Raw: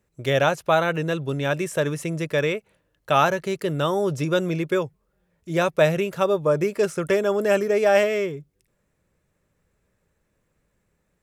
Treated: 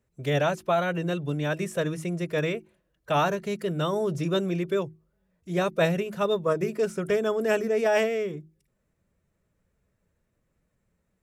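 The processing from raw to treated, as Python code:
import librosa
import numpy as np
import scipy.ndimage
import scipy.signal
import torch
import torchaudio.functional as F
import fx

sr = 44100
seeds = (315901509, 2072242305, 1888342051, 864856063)

y = fx.low_shelf(x, sr, hz=390.0, db=5.5)
y = fx.hum_notches(y, sr, base_hz=50, count=7)
y = fx.pitch_keep_formants(y, sr, semitones=1.0)
y = y * 10.0 ** (-6.0 / 20.0)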